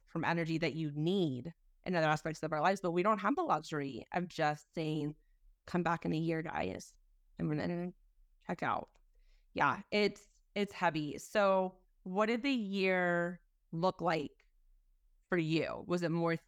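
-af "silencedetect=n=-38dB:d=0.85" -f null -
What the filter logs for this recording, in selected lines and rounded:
silence_start: 14.27
silence_end: 15.32 | silence_duration: 1.05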